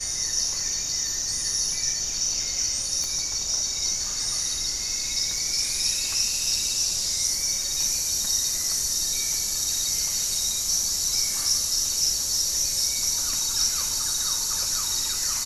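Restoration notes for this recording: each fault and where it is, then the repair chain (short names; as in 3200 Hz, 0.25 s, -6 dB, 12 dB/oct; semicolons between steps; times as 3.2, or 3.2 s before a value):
3.04 pop -16 dBFS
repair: de-click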